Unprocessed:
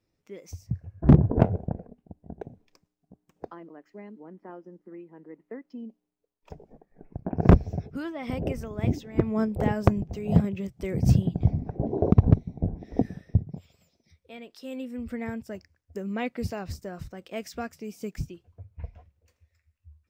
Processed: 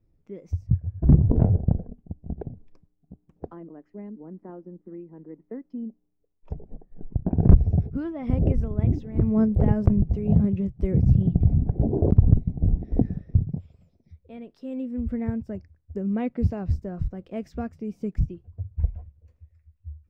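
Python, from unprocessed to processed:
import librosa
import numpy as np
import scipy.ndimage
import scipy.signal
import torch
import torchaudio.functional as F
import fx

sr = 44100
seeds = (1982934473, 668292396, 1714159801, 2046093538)

p1 = fx.tilt_eq(x, sr, slope=-4.5)
p2 = fx.over_compress(p1, sr, threshold_db=-13.0, ratio=-0.5)
p3 = p1 + (p2 * 10.0 ** (2.0 / 20.0))
y = p3 * 10.0 ** (-13.5 / 20.0)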